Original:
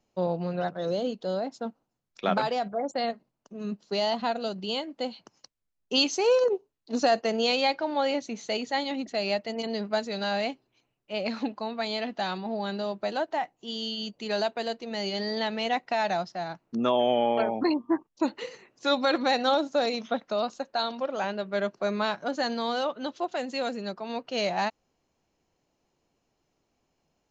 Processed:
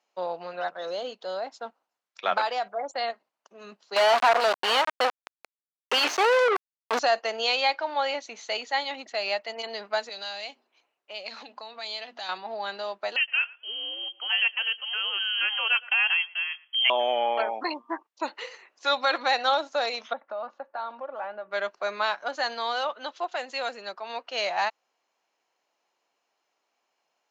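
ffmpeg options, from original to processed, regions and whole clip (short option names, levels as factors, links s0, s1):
-filter_complex "[0:a]asettb=1/sr,asplit=3[s0][s1][s2];[s0]atrim=end=3.964[s3];[s1]atrim=start=3.96:end=6.99,asetpts=PTS-STARTPTS,afade=t=in:d=0.004:c=qsin,afade=t=out:st=3.026:d=0.004:c=qsin,aeval=exprs='val(0)*gte(abs(val(0)),0.0211)':c=same,asplit=2[s4][s5];[s5]highpass=f=720:p=1,volume=44.7,asoftclip=type=tanh:threshold=0.282[s6];[s4][s6]amix=inputs=2:normalize=0,lowpass=f=1300:p=1,volume=0.501[s7];[s2]atrim=start=6.986[s8];[s3][s7]acrossfade=d=0.004:c1=hsin:c2=qsin[s9];[s9][s8]acrossfade=d=0.004:c1=qsin:c2=hsin,asettb=1/sr,asplit=3[s10][s11][s12];[s10]atrim=end=10.094[s13];[s11]atrim=start=10.09:end=12.29,asetpts=PTS-STARTPTS,afade=t=in:d=0.004:c=qsin,afade=t=out:st=2.196:d=0.004:c=qsin,equalizer=f=420:w=0.48:g=5.5,bandreject=f=60:t=h:w=6,bandreject=f=120:t=h:w=6,bandreject=f=180:t=h:w=6,bandreject=f=240:t=h:w=6,acrossover=split=130|3000[s14][s15][s16];[s15]acompressor=threshold=0.0126:ratio=6:attack=3.2:release=140:knee=2.83:detection=peak[s17];[s14][s17][s16]amix=inputs=3:normalize=0[s18];[s12]atrim=start=12.286[s19];[s13][s18]acrossfade=d=0.004:c1=hsin:c2=qsin[s20];[s20][s19]acrossfade=d=0.004:c1=qsin:c2=hsin,asettb=1/sr,asplit=3[s21][s22][s23];[s21]atrim=end=13.164[s24];[s22]atrim=start=13.16:end=16.9,asetpts=PTS-STARTPTS,afade=t=in:d=0.004:c=qsin,afade=t=out:st=3.736:d=0.004:c=qsin,lowpass=f=2900:t=q:w=0.5098,lowpass=f=2900:t=q:w=0.6013,lowpass=f=2900:t=q:w=0.9,lowpass=f=2900:t=q:w=2.563,afreqshift=-3400,asplit=2[s25][s26];[s26]adelay=114,lowpass=f=1700:p=1,volume=0.119,asplit=2[s27][s28];[s28]adelay=114,lowpass=f=1700:p=1,volume=0.22[s29];[s25][s27][s29]amix=inputs=3:normalize=0,atrim=end_sample=164934[s30];[s23]atrim=start=16.896[s31];[s24][s30]acrossfade=d=0.004:c1=hsin:c2=qsin[s32];[s32][s31]acrossfade=d=0.004:c1=qsin:c2=hsin,asettb=1/sr,asplit=3[s33][s34][s35];[s33]atrim=end=20.134[s36];[s34]atrim=start=20.13:end=21.51,asetpts=PTS-STARTPTS,afade=t=in:d=0.004:c=qsin,afade=t=out:st=1.376:d=0.004:c=qsin,lowpass=1300,aecho=1:1:3.5:0.46,atrim=end_sample=60858,acompressor=threshold=0.0224:ratio=2:attack=3.2:release=140:knee=1:detection=peak[s37];[s35]atrim=start=21.506[s38];[s36][s37]acrossfade=d=0.004:c1=hsin:c2=qsin[s39];[s39][s38]acrossfade=d=0.004:c1=qsin:c2=hsin,highpass=850,aemphasis=mode=reproduction:type=cd,volume=1.78"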